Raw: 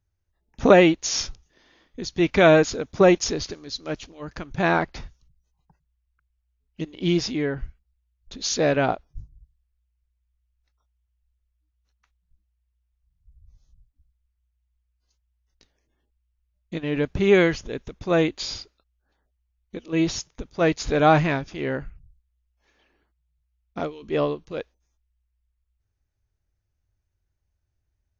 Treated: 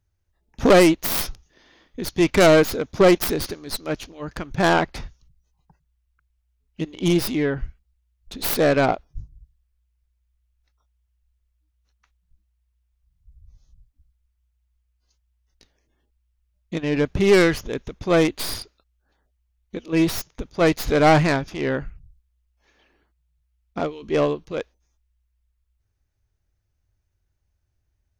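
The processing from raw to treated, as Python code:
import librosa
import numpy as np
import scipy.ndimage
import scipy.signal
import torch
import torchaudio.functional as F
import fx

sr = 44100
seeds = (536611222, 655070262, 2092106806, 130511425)

y = fx.tracing_dist(x, sr, depth_ms=0.26)
y = 10.0 ** (-10.5 / 20.0) * np.tanh(y / 10.0 ** (-10.5 / 20.0))
y = F.gain(torch.from_numpy(y), 3.5).numpy()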